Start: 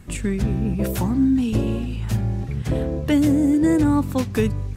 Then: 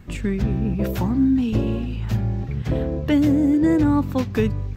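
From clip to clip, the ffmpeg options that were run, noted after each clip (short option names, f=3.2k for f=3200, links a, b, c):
-af "equalizer=f=9.5k:w=1.2:g=-14.5"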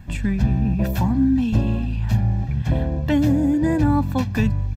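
-af "aecho=1:1:1.2:0.67"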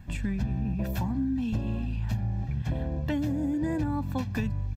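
-af "acompressor=threshold=-19dB:ratio=6,volume=-6dB"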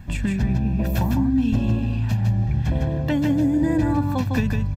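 -af "aecho=1:1:155:0.596,volume=7dB"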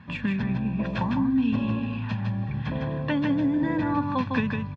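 -af "highpass=180,equalizer=f=340:t=q:w=4:g=-8,equalizer=f=710:t=q:w=4:g=-9,equalizer=f=1.1k:t=q:w=4:g=8,lowpass=f=3.9k:w=0.5412,lowpass=f=3.9k:w=1.3066"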